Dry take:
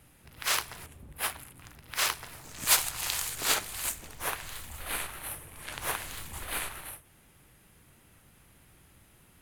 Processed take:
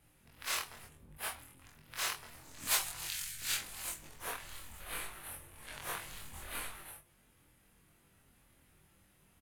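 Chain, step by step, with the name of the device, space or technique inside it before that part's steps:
0:03.05–0:03.60: flat-topped bell 560 Hz −13 dB 2.5 octaves
double-tracked vocal (double-tracking delay 26 ms −4 dB; chorus effect 1 Hz, delay 20 ms, depth 2.6 ms)
level −6 dB

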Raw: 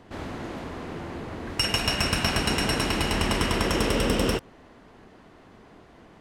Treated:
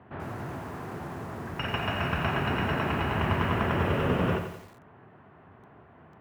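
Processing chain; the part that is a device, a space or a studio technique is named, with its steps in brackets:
0:03.02–0:03.59: parametric band 130 Hz +3 dB 0.25 octaves
sub-octave bass pedal (sub-octave generator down 1 octave, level 0 dB; loudspeaker in its box 77–2,300 Hz, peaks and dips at 77 Hz −4 dB, 120 Hz −5 dB, 210 Hz −4 dB, 300 Hz −7 dB, 500 Hz −6 dB, 2,100 Hz −5 dB)
feedback echo at a low word length 87 ms, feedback 55%, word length 8 bits, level −7.5 dB

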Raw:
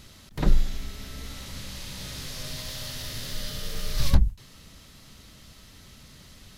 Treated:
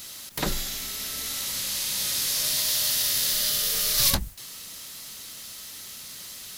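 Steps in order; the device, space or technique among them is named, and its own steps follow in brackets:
turntable without a phono preamp (RIAA equalisation recording; white noise bed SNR 26 dB)
level +4 dB

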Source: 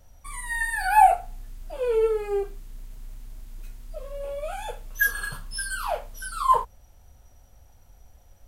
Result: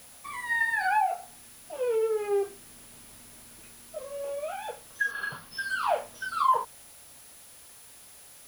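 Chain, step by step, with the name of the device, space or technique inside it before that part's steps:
medium wave at night (band-pass filter 180–3,800 Hz; downward compressor, threshold −23 dBFS, peak gain reduction 12 dB; amplitude tremolo 0.32 Hz, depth 47%; steady tone 10,000 Hz −56 dBFS; white noise bed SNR 21 dB)
0:05.10–0:05.66: parametric band 7,600 Hz −14.5 dB → −5 dB 0.38 octaves
level +3.5 dB

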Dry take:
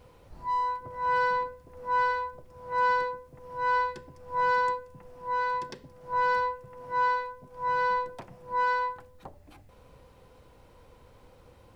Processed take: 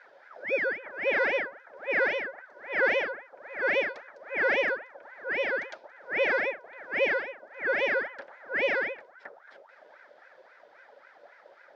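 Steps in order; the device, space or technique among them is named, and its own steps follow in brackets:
voice changer toy (ring modulator whose carrier an LFO sweeps 1,000 Hz, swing 55%, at 3.7 Hz; loudspeaker in its box 530–5,000 Hz, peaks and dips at 570 Hz +9 dB, 1,100 Hz −10 dB, 1,700 Hz +4 dB, 2,800 Hz −7 dB, 4,100 Hz −3 dB)
level +3.5 dB

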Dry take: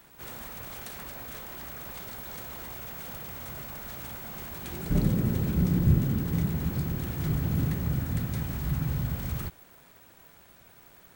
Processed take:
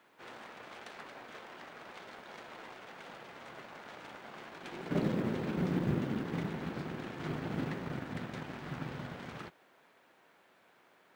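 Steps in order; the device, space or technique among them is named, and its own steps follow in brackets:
phone line with mismatched companding (band-pass filter 300–3,200 Hz; mu-law and A-law mismatch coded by A)
level +3.5 dB

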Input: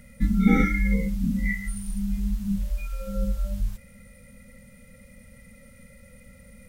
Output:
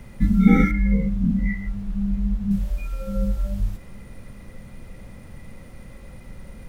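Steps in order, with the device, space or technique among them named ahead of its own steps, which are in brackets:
0:00.71–0:02.51: high-frequency loss of the air 500 metres
car interior (parametric band 130 Hz +8 dB 0.75 octaves; high-shelf EQ 3,600 Hz −6 dB; brown noise bed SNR 17 dB)
level +2.5 dB

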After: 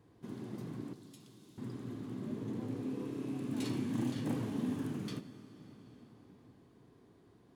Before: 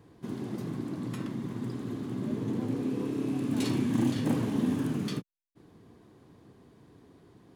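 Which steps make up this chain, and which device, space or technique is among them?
0:00.93–0:01.58: inverse Chebyshev high-pass filter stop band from 580 Hz, stop band 80 dB
dense smooth reverb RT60 4.5 s, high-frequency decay 0.75×, DRR 13 dB
compressed reverb return (on a send at −4.5 dB: convolution reverb RT60 2.7 s, pre-delay 75 ms + downward compressor, threshold −42 dBFS, peak gain reduction 17.5 dB)
on the sum: level −8 dB

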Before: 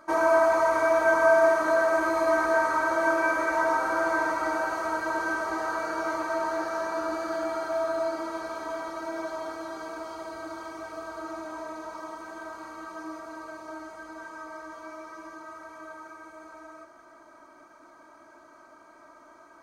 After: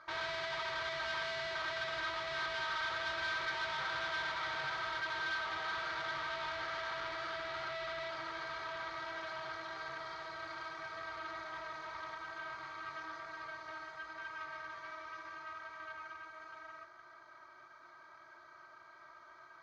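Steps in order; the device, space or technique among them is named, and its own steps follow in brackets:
scooped metal amplifier (tube saturation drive 36 dB, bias 0.65; loudspeaker in its box 86–4,100 Hz, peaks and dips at 140 Hz +9 dB, 360 Hz +10 dB, 610 Hz −3 dB, 930 Hz −3 dB, 2,700 Hz −10 dB; guitar amp tone stack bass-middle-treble 10-0-10)
level +9.5 dB

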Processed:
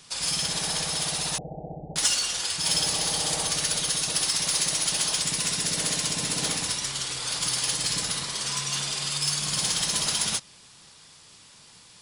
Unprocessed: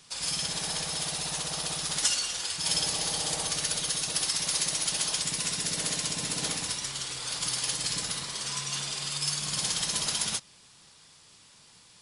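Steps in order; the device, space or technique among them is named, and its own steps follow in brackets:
parallel distortion (in parallel at −6.5 dB: hard clipping −28 dBFS, distortion −10 dB)
0:01.38–0:01.96: on the sum: Butterworth low-pass 800 Hz 96 dB per octave
level +1 dB

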